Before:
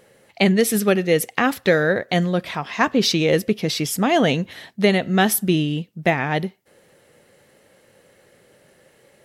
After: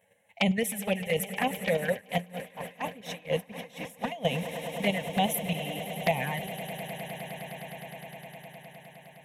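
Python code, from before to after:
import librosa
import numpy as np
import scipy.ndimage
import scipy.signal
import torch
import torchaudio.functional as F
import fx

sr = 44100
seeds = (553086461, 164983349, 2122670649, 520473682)

y = fx.highpass(x, sr, hz=160.0, slope=6)
y = fx.level_steps(y, sr, step_db=9)
y = fx.fixed_phaser(y, sr, hz=1300.0, stages=6)
y = fx.env_flanger(y, sr, rest_ms=11.0, full_db=-21.0)
y = fx.echo_swell(y, sr, ms=103, loudest=8, wet_db=-17.5)
y = fx.tremolo_db(y, sr, hz=4.2, depth_db=21, at=(1.92, 4.25))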